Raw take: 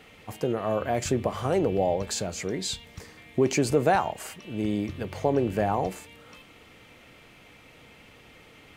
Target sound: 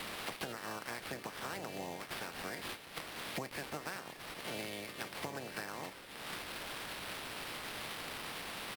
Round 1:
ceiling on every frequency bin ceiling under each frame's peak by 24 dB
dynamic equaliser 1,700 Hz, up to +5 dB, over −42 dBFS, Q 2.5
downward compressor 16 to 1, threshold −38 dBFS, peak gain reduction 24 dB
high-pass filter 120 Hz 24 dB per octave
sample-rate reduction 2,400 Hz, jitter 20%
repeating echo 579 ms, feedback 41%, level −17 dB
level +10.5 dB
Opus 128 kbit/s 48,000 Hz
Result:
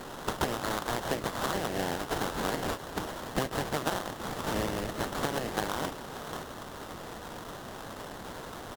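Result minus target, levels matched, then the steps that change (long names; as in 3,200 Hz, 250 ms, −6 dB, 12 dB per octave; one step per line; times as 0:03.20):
downward compressor: peak gain reduction −11 dB; sample-rate reduction: distortion +5 dB
change: downward compressor 16 to 1, threshold −49.5 dBFS, peak gain reduction 35 dB
change: sample-rate reduction 6,900 Hz, jitter 20%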